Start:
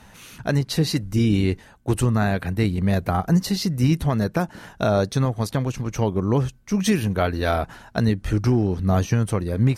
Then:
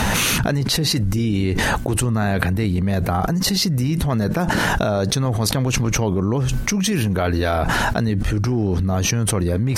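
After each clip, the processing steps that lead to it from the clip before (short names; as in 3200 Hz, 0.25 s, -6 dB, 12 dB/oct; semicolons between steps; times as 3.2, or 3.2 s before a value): fast leveller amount 100%; gain -5 dB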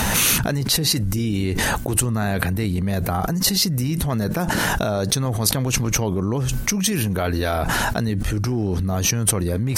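high shelf 7400 Hz +11.5 dB; gain -2.5 dB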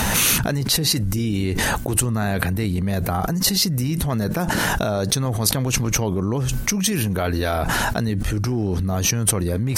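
nothing audible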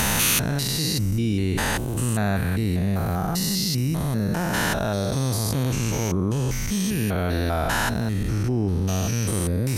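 stepped spectrum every 0.2 s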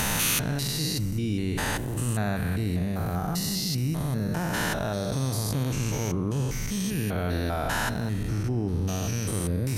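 reverb RT60 1.8 s, pre-delay 7 ms, DRR 13.5 dB; gain -4.5 dB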